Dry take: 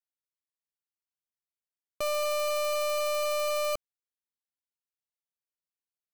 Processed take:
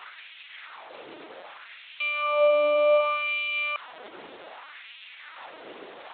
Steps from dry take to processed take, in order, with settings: bell 390 Hz -14.5 dB 0.62 oct; reverse; upward compressor, threshold -47 dBFS; reverse; added noise pink -48 dBFS; LPC vocoder at 8 kHz pitch kept; LFO high-pass sine 0.65 Hz 360–2700 Hz; gain +6 dB

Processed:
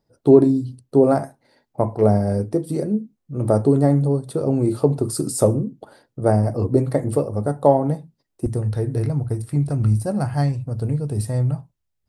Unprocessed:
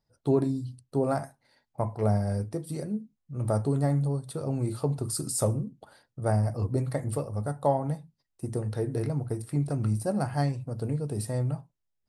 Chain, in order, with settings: bell 360 Hz +10.5 dB 2 oct, from 8.46 s 63 Hz; gain +3.5 dB

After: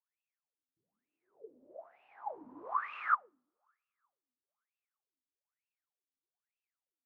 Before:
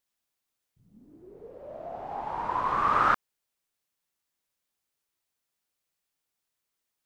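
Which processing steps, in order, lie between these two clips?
two-slope reverb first 0.81 s, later 3.2 s, from -25 dB, DRR 17.5 dB; wah 1.1 Hz 250–2700 Hz, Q 19; gain +4.5 dB

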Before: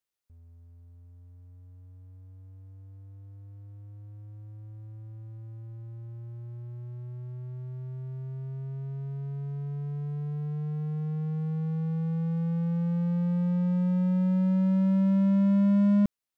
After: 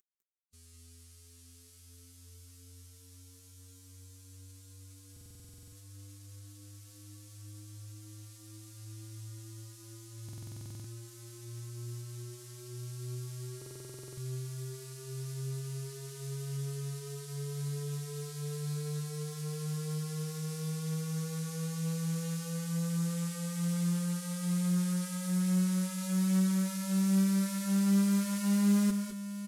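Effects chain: CVSD 64 kbps; tone controls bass -13 dB, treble +15 dB; time stretch by phase-locked vocoder 1.8×; in parallel at +2 dB: compressor, threshold -41 dBFS, peak gain reduction 12.5 dB; on the sum: band shelf 700 Hz -12.5 dB 1 oct; on a send: tapped delay 0.202/0.218/0.848 s -7.5/-12/-10.5 dB; on the sum: stuck buffer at 5.12/10.24/13.57, samples 2048, times 12; Doppler distortion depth 0.16 ms; gain -1 dB

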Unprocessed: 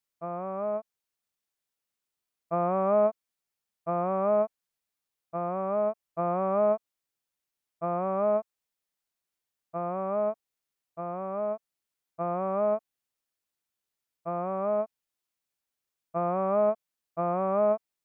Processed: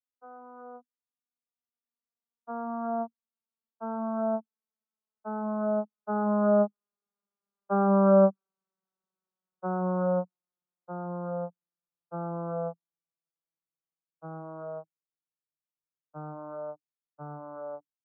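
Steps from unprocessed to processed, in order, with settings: vocoder on a gliding note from B3, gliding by -9 st; Doppler pass-by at 8.25, 6 m/s, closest 7.1 m; resonant high shelf 1600 Hz -6.5 dB, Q 3; gain +6 dB

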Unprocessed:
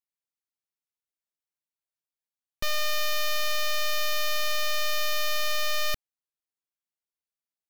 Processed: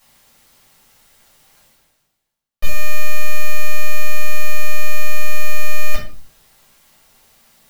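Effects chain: reverse; upward compressor, threshold -29 dBFS; reverse; shoebox room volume 310 m³, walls furnished, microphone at 6.4 m; gain -5 dB

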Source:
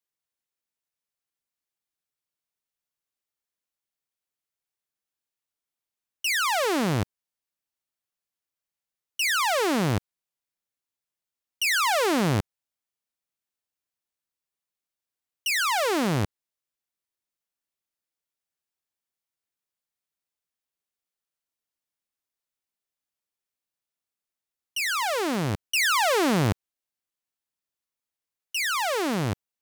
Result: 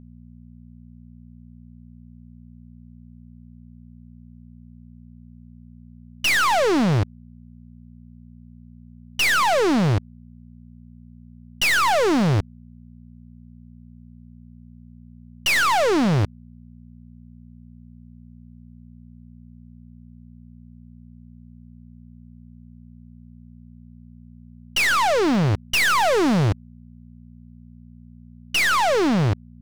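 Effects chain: CVSD 32 kbps; sample leveller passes 5; in parallel at -12 dB: wavefolder -33 dBFS; on the sum: buzz 60 Hz, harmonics 4, -45 dBFS -1 dB/oct

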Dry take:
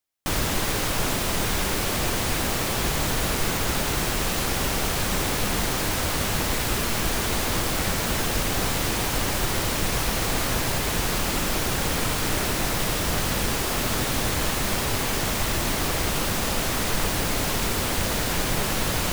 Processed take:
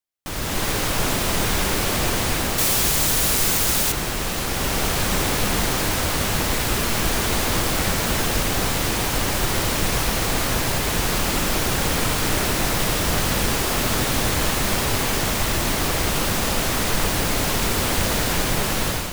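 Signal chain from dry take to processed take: 2.58–3.92 high shelf 4100 Hz +11 dB; AGC gain up to 11.5 dB; gain -6 dB

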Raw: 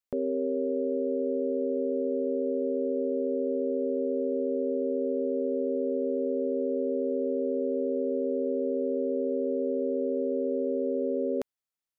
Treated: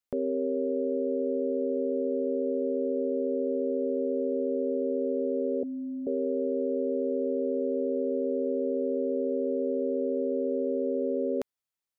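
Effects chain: 5.63–6.07 Chebyshev band-stop 280–700 Hz, order 3

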